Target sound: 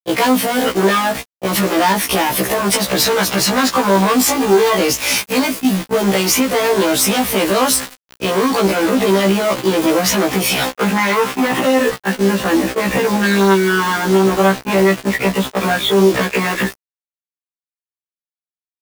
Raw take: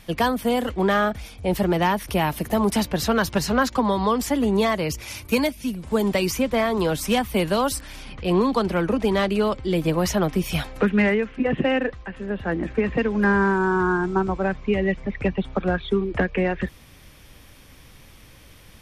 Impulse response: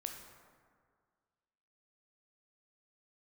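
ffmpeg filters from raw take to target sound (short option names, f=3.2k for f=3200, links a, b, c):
-filter_complex "[0:a]asoftclip=type=tanh:threshold=-25dB,highpass=230,agate=range=-35dB:threshold=-38dB:ratio=16:detection=peak,asettb=1/sr,asplit=3[a][b][c];[a]atrim=end=10.974[d];[b]atrim=start=10.97:end=11.64,asetpts=PTS-STARTPTS,afade=t=in:d=0.004:c=qsin,afade=t=out:st=0.666:d=0.004:c=qsin,equalizer=f=500:t=o:w=1:g=-4,equalizer=f=1k:t=o:w=1:g=12,equalizer=f=4k:t=o:w=1:g=4[e];[c]atrim=start=11.636[f];[d][e]acrossfade=d=0.004:c1=hsin:c2=qsin[g];[g][f]acrossfade=d=0.004:c1=qsin:c2=hsin,acompressor=threshold=-39dB:ratio=2,asplit=2[h][i];[i]adelay=737,lowpass=f=4.7k:p=1,volume=-22.5dB,asplit=2[j][k];[k]adelay=737,lowpass=f=4.7k:p=1,volume=0.5,asplit=2[l][m];[m]adelay=737,lowpass=f=4.7k:p=1,volume=0.5[n];[h][j][l][n]amix=inputs=4:normalize=0,acrusher=bits=7:mix=0:aa=0.000001,asettb=1/sr,asplit=3[o][p][q];[o]atrim=end=4.234[r];[p]atrim=start=4.23:end=4.79,asetpts=PTS-STARTPTS,afade=t=in:d=0.004:c=qsin,afade=t=out:st=0.556:d=0.004:c=qsin,asplit=2[s][t];[t]adelay=18,volume=-3dB[u];[s][u]amix=inputs=2:normalize=0,atrim=end_sample=24696[v];[q]atrim=start=4.786[w];[r][v]acrossfade=d=0.004:c1=hsin:c2=qsin[x];[x][w]acrossfade=d=0.004:c1=qsin:c2=hsin,alimiter=level_in=29.5dB:limit=-1dB:release=50:level=0:latency=1,afftfilt=real='re*1.73*eq(mod(b,3),0)':imag='im*1.73*eq(mod(b,3),0)':win_size=2048:overlap=0.75,volume=-3dB"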